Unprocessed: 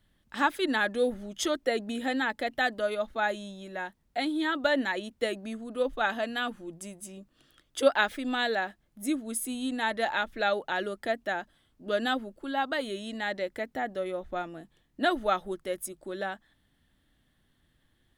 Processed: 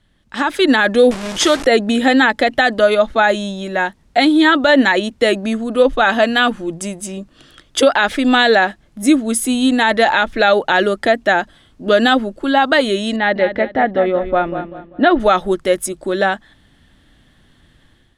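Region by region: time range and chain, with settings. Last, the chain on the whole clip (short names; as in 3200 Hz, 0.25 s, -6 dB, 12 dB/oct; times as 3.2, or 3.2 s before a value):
1.11–1.66 delta modulation 64 kbps, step -35 dBFS + low shelf 410 Hz -5.5 dB
13.16–15.2 air absorption 280 m + feedback echo 0.195 s, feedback 33%, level -9.5 dB + mismatched tape noise reduction decoder only
whole clip: LPF 8800 Hz 12 dB/oct; limiter -20.5 dBFS; AGC gain up to 9 dB; gain +9 dB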